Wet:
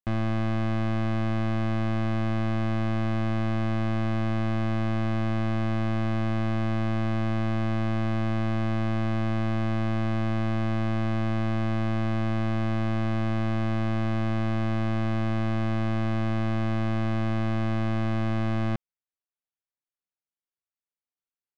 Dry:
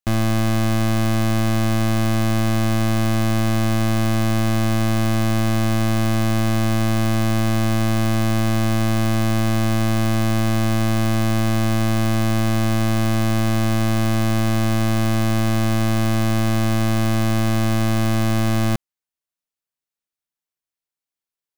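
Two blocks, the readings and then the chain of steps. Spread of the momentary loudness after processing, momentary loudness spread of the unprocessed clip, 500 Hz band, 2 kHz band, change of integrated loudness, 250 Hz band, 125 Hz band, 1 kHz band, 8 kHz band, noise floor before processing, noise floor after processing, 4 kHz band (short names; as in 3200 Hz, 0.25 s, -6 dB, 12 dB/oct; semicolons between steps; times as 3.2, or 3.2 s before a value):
0 LU, 0 LU, -7.5 dB, -8.5 dB, -8.0 dB, -7.5 dB, -7.5 dB, -7.5 dB, under -25 dB, under -85 dBFS, under -85 dBFS, -13.5 dB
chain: LPF 2700 Hz 12 dB/oct; gain -7.5 dB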